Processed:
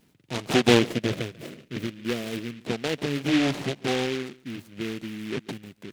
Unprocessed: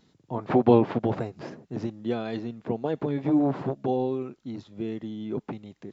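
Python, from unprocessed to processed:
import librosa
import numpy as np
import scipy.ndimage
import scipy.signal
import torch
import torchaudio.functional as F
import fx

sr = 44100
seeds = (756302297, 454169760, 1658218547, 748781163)

p1 = fx.band_shelf(x, sr, hz=1100.0, db=-15.0, octaves=1.2, at=(0.79, 2.59))
p2 = p1 + fx.echo_single(p1, sr, ms=142, db=-21.5, dry=0)
y = fx.noise_mod_delay(p2, sr, seeds[0], noise_hz=2300.0, depth_ms=0.17)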